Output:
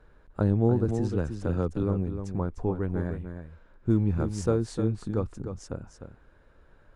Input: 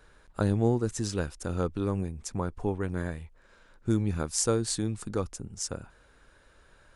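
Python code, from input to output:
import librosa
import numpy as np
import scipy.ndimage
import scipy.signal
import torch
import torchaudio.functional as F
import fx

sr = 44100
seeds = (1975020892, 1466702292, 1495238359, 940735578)

y = fx.law_mismatch(x, sr, coded='mu', at=(3.89, 4.5))
y = fx.lowpass(y, sr, hz=1100.0, slope=6)
y = fx.low_shelf(y, sr, hz=440.0, db=3.0)
y = y + 10.0 ** (-8.5 / 20.0) * np.pad(y, (int(303 * sr / 1000.0), 0))[:len(y)]
y = fx.band_squash(y, sr, depth_pct=70, at=(0.88, 1.83))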